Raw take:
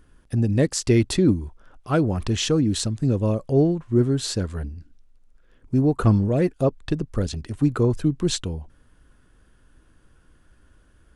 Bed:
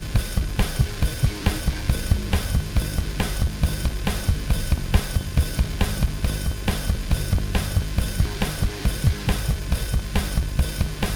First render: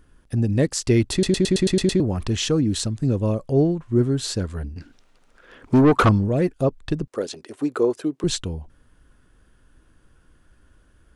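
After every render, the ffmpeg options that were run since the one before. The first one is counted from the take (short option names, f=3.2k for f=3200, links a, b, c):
-filter_complex "[0:a]asettb=1/sr,asplit=3[a][b][c];[a]atrim=end=4.764[d];[b]atrim=start=4.76:end=6.09,asetpts=PTS-STARTPTS,afade=t=in:d=0.004:c=qsin,afade=t=out:st=1.326:d=0.004:c=qsin,asplit=2[e][f];[f]highpass=f=720:p=1,volume=26dB,asoftclip=type=tanh:threshold=-6.5dB[g];[e][g]amix=inputs=2:normalize=0,lowpass=f=2.9k:p=1,volume=-6dB[h];[c]atrim=start=6.086[i];[d][h]acrossfade=d=0.004:c1=hsin:c2=qsin[j];[j][i]acrossfade=d=0.004:c1=qsin:c2=hsin,asettb=1/sr,asplit=3[k][l][m];[k]atrim=end=7.074[n];[l]atrim=start=7.07:end=8.24,asetpts=PTS-STARTPTS,afade=t=in:d=0.004:c=qsin,afade=t=out:st=1.166:d=0.004:c=qsin,highpass=f=410:t=q:w=1.6[o];[m]atrim=start=8.236[p];[n][o]acrossfade=d=0.004:c1=hsin:c2=qsin[q];[q][p]acrossfade=d=0.004:c1=qsin:c2=hsin,asplit=9[r][s][t][u][v][w][x][y][z];[r]atrim=end=1.232[aa];[s]atrim=start=1.118:end=1.232[ab];[t]atrim=start=1.118:end=1.232[ac];[u]atrim=start=1.118:end=1.232[ad];[v]atrim=start=1.118:end=1.232[ae];[w]atrim=start=1.118:end=1.232[af];[x]atrim=start=1.118:end=1.232[ag];[y]atrim=start=1.118:end=1.232[ah];[z]atrim=start=1.998[ai];[aa][ab]acrossfade=d=0.004:c1=hsin:c2=hsin[aj];[aj][ac]acrossfade=d=0.004:c1=hsin:c2=hsin[ak];[ak][ad]acrossfade=d=0.004:c1=hsin:c2=hsin[al];[al][ae]acrossfade=d=0.004:c1=hsin:c2=hsin[am];[am][af]acrossfade=d=0.004:c1=hsin:c2=hsin[an];[an][ag]acrossfade=d=0.004:c1=hsin:c2=hsin[ao];[ao][ah]acrossfade=d=0.004:c1=hsin:c2=hsin[ap];[ap][ai]acrossfade=d=0.004:c1=hsin:c2=hsin"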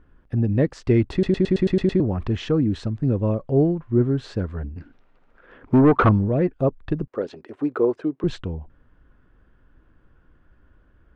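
-af "lowpass=2k"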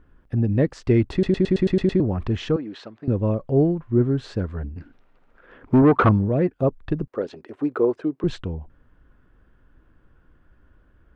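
-filter_complex "[0:a]asettb=1/sr,asplit=3[a][b][c];[a]atrim=end=2.564[d];[b]atrim=start=2.56:end=3.08,asetpts=PTS-STARTPTS,afade=t=in:d=0.004:c=qsin,afade=t=out:st=0.516:d=0.004:c=qsin,highpass=500,lowpass=4.4k[e];[c]atrim=start=3.076[f];[d][e]acrossfade=d=0.004:c1=hsin:c2=qsin[g];[g][f]acrossfade=d=0.004:c1=qsin:c2=hsin,asettb=1/sr,asplit=3[h][i][j];[h]atrim=end=5.824[k];[i]atrim=start=5.82:end=6.63,asetpts=PTS-STARTPTS,afade=t=in:d=0.004:c=qsin,afade=t=out:st=0.806:d=0.004:c=qsin,highpass=61[l];[j]atrim=start=6.626[m];[k][l]acrossfade=d=0.004:c1=hsin:c2=qsin[n];[n][m]acrossfade=d=0.004:c1=qsin:c2=hsin"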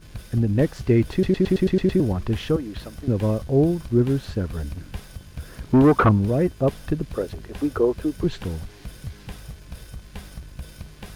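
-filter_complex "[1:a]volume=-15dB[a];[0:a][a]amix=inputs=2:normalize=0"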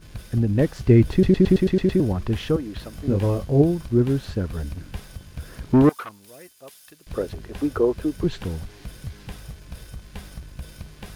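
-filter_complex "[0:a]asettb=1/sr,asplit=3[a][b][c];[a]atrim=end=0.874[d];[b]atrim=start=0.87:end=1.59,asetpts=PTS-STARTPTS,afade=t=in:d=0.004:c=qsin,afade=t=out:st=0.716:d=0.004:c=qsin,lowshelf=f=260:g=6.5[e];[c]atrim=start=1.586[f];[d][e]acrossfade=d=0.004:c1=hsin:c2=qsin[g];[g][f]acrossfade=d=0.004:c1=qsin:c2=hsin,asettb=1/sr,asplit=3[h][i][j];[h]atrim=end=2.914[k];[i]atrim=start=2.91:end=3.62,asetpts=PTS-STARTPTS,afade=t=in:d=0.004:c=qsin,afade=t=out:st=0.706:d=0.004:c=qsin,asplit=2[l][m];[m]adelay=21,volume=-4.5dB[n];[l][n]amix=inputs=2:normalize=0,atrim=end_sample=31311[o];[j]atrim=start=3.616[p];[k][o]acrossfade=d=0.004:c1=hsin:c2=qsin[q];[q][p]acrossfade=d=0.004:c1=qsin:c2=hsin,asettb=1/sr,asplit=3[r][s][t];[r]atrim=end=5.894[u];[s]atrim=start=5.89:end=7.07,asetpts=PTS-STARTPTS,afade=t=in:d=0.004:c=qsin,afade=t=out:st=1.176:d=0.004:c=qsin,aderivative[v];[t]atrim=start=7.066[w];[u][v]acrossfade=d=0.004:c1=hsin:c2=qsin[x];[x][w]acrossfade=d=0.004:c1=qsin:c2=hsin"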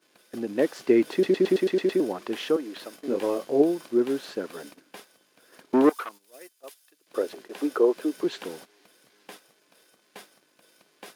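-af "highpass=f=300:w=0.5412,highpass=f=300:w=1.3066,agate=range=-12dB:threshold=-44dB:ratio=16:detection=peak"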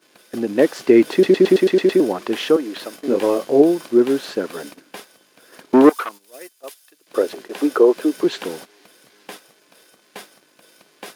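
-af "volume=8.5dB,alimiter=limit=-2dB:level=0:latency=1"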